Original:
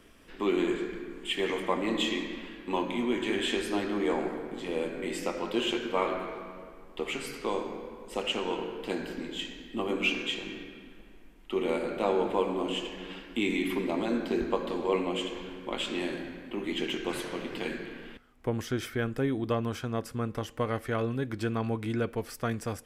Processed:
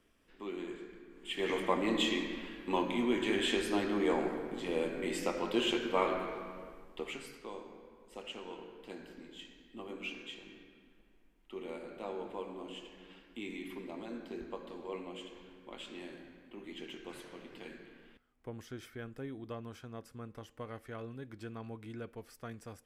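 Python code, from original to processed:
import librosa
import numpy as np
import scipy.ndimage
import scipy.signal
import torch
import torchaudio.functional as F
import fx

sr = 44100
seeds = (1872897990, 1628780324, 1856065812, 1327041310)

y = fx.gain(x, sr, db=fx.line((1.1, -14.0), (1.53, -2.0), (6.72, -2.0), (7.48, -14.0)))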